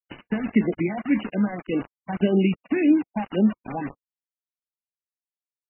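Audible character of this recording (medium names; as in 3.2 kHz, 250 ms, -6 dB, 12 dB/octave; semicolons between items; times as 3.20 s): phasing stages 4, 1.8 Hz, lowest notch 410–1600 Hz; a quantiser's noise floor 6-bit, dither none; MP3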